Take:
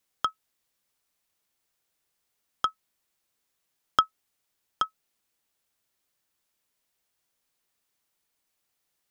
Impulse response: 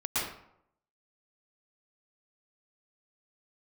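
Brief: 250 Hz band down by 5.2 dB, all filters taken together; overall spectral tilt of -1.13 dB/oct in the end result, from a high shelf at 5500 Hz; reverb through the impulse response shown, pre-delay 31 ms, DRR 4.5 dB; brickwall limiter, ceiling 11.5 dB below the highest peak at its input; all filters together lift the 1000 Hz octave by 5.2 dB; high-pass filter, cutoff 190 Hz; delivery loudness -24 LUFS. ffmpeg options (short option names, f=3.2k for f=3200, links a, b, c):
-filter_complex "[0:a]highpass=190,equalizer=f=250:t=o:g=-6,equalizer=f=1k:t=o:g=7.5,highshelf=f=5.5k:g=8,alimiter=limit=-11.5dB:level=0:latency=1,asplit=2[a][b];[1:a]atrim=start_sample=2205,adelay=31[c];[b][c]afir=irnorm=-1:irlink=0,volume=-13dB[d];[a][d]amix=inputs=2:normalize=0,volume=8.5dB"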